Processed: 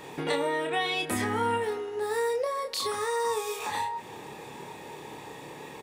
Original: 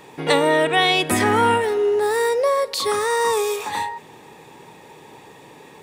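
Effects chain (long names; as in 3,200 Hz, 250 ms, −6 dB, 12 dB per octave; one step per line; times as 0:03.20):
downward compressor 3 to 1, threshold −32 dBFS, peak gain reduction 14 dB
double-tracking delay 28 ms −4.5 dB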